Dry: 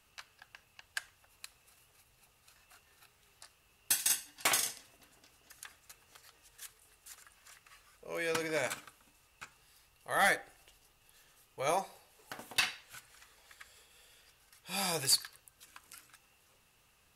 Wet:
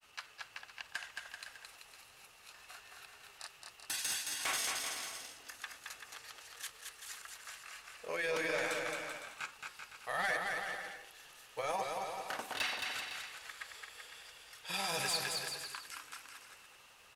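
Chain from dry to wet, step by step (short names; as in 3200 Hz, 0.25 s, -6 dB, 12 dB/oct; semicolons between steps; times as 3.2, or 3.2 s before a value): overdrive pedal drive 15 dB, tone 5400 Hz, clips at -16.5 dBFS; limiter -27.5 dBFS, peak gain reduction 10 dB; grains, spray 18 ms, pitch spread up and down by 0 st; on a send: bouncing-ball echo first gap 0.22 s, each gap 0.75×, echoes 5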